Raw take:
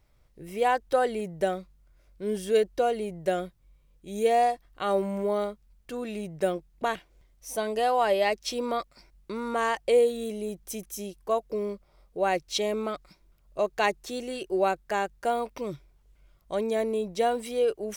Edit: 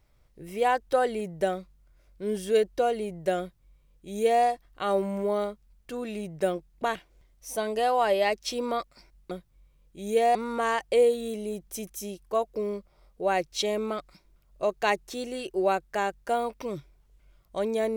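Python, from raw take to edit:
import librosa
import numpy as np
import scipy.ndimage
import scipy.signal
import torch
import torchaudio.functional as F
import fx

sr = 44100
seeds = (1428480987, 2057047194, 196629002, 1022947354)

y = fx.edit(x, sr, fx.duplicate(start_s=3.4, length_s=1.04, to_s=9.31), tone=tone)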